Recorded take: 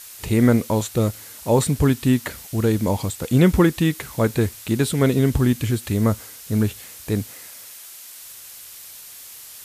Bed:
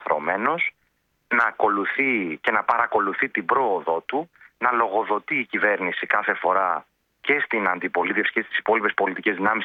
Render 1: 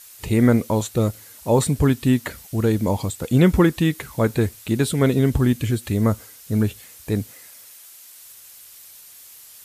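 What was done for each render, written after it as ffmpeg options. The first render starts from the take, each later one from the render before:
-af "afftdn=nr=6:nf=-41"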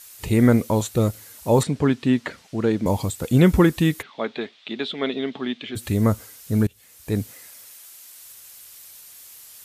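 -filter_complex "[0:a]asettb=1/sr,asplit=3[a][b][c];[a]atrim=end=1.634[d];[b]atrim=start=1.63:end=2.86,asetpts=PTS-STARTPTS,afade=t=in:d=0.004:c=qsin,afade=t=out:st=1.226:d=0.004:c=qsin,highpass=170,lowpass=4.5k[e];[c]atrim=start=2.856[f];[d][e]acrossfade=d=0.004:c1=hsin:c2=qsin[g];[g][f]acrossfade=d=0.004:c1=qsin:c2=hsin,asplit=3[h][i][j];[h]afade=t=out:st=4.01:d=0.02[k];[i]highpass=f=280:w=0.5412,highpass=f=280:w=1.3066,equalizer=f=320:t=q:w=4:g=-10,equalizer=f=500:t=q:w=4:g=-9,equalizer=f=970:t=q:w=4:g=-5,equalizer=f=1.5k:t=q:w=4:g=-5,equalizer=f=3.5k:t=q:w=4:g=8,lowpass=f=3.8k:w=0.5412,lowpass=f=3.8k:w=1.3066,afade=t=in:st=4.01:d=0.02,afade=t=out:st=5.75:d=0.02[l];[j]afade=t=in:st=5.75:d=0.02[m];[k][l][m]amix=inputs=3:normalize=0,asplit=2[n][o];[n]atrim=end=6.67,asetpts=PTS-STARTPTS,afade=t=out:st=6.666:d=0.004:c=hsin:silence=0.0668344[p];[o]atrim=start=6.67,asetpts=PTS-STARTPTS,afade=t=in:d=0.54:silence=0.0668344[q];[p][q]concat=n=2:v=0:a=1"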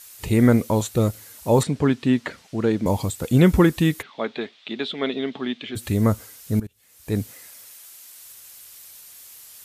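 -filter_complex "[0:a]asplit=2[a][b];[a]atrim=end=6.6,asetpts=PTS-STARTPTS,afade=t=out:st=6.596:d=0.004:c=hsin:silence=0.112202[c];[b]atrim=start=6.6,asetpts=PTS-STARTPTS,afade=t=in:d=0.56:silence=0.112202[d];[c][d]concat=n=2:v=0:a=1"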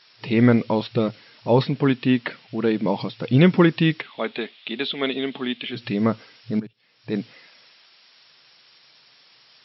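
-af "afftfilt=real='re*between(b*sr/4096,110,5600)':imag='im*between(b*sr/4096,110,5600)':win_size=4096:overlap=0.75,adynamicequalizer=threshold=0.00447:dfrequency=2700:dqfactor=1.6:tfrequency=2700:tqfactor=1.6:attack=5:release=100:ratio=0.375:range=3:mode=boostabove:tftype=bell"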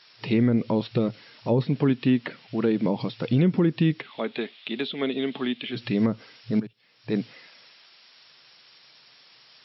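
-filter_complex "[0:a]acrossover=split=490[a][b];[b]acompressor=threshold=-31dB:ratio=6[c];[a][c]amix=inputs=2:normalize=0,alimiter=limit=-11.5dB:level=0:latency=1:release=157"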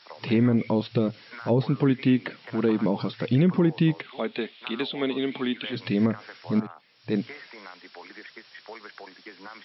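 -filter_complex "[1:a]volume=-22.5dB[a];[0:a][a]amix=inputs=2:normalize=0"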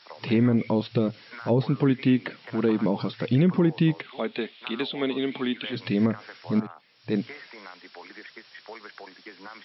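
-af anull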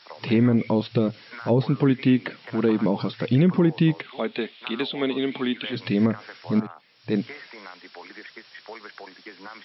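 -af "volume=2dB"

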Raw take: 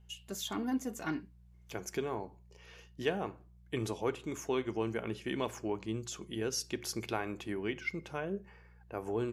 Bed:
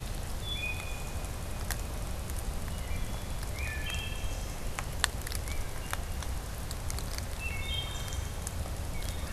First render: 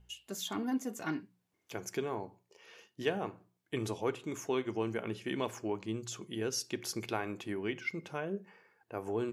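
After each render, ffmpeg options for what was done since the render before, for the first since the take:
-af "bandreject=f=60:t=h:w=4,bandreject=f=120:t=h:w=4,bandreject=f=180:t=h:w=4"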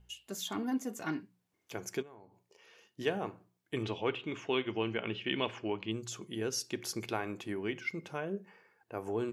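-filter_complex "[0:a]asplit=3[a][b][c];[a]afade=t=out:st=2.01:d=0.02[d];[b]acompressor=threshold=-58dB:ratio=2.5:attack=3.2:release=140:knee=1:detection=peak,afade=t=in:st=2.01:d=0.02,afade=t=out:st=2.86:d=0.02[e];[c]afade=t=in:st=2.86:d=0.02[f];[d][e][f]amix=inputs=3:normalize=0,asettb=1/sr,asplit=3[g][h][i];[g]atrim=end=3.834[j];[h]atrim=start=3.83:end=5.92,asetpts=PTS-STARTPTS,afade=t=in:d=0.004:c=qsin,afade=t=out:st=2.086:d=0.004:c=qsin,lowpass=f=3k:t=q:w=3.5[k];[i]atrim=start=5.916[l];[j][k]acrossfade=d=0.004:c1=hsin:c2=qsin[m];[m][l]acrossfade=d=0.004:c1=qsin:c2=hsin"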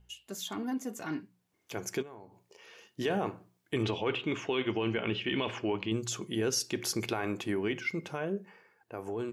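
-af "alimiter=level_in=3.5dB:limit=-24dB:level=0:latency=1:release=11,volume=-3.5dB,dynaudnorm=f=670:g=5:m=6.5dB"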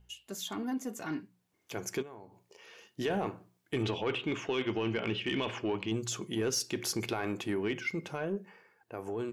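-af "asoftclip=type=tanh:threshold=-22dB"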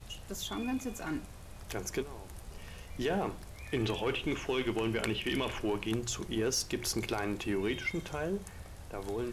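-filter_complex "[1:a]volume=-11.5dB[a];[0:a][a]amix=inputs=2:normalize=0"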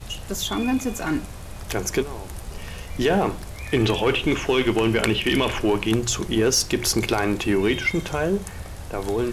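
-af "volume=12dB"

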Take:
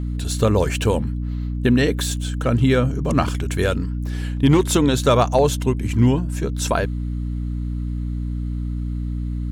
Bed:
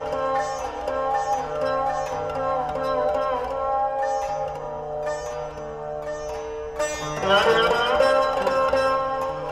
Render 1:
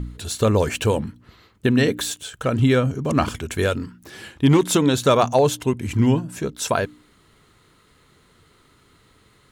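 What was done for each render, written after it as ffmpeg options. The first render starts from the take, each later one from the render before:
-af "bandreject=f=60:t=h:w=4,bandreject=f=120:t=h:w=4,bandreject=f=180:t=h:w=4,bandreject=f=240:t=h:w=4,bandreject=f=300:t=h:w=4"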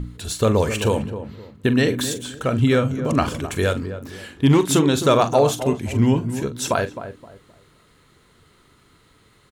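-filter_complex "[0:a]asplit=2[a][b];[b]adelay=43,volume=-12dB[c];[a][c]amix=inputs=2:normalize=0,asplit=2[d][e];[e]adelay=261,lowpass=f=970:p=1,volume=-10dB,asplit=2[f][g];[g]adelay=261,lowpass=f=970:p=1,volume=0.32,asplit=2[h][i];[i]adelay=261,lowpass=f=970:p=1,volume=0.32,asplit=2[j][k];[k]adelay=261,lowpass=f=970:p=1,volume=0.32[l];[d][f][h][j][l]amix=inputs=5:normalize=0"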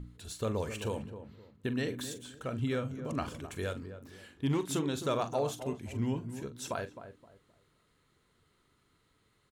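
-af "volume=-15.5dB"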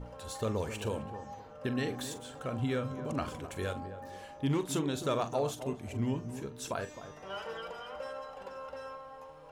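-filter_complex "[1:a]volume=-23dB[a];[0:a][a]amix=inputs=2:normalize=0"

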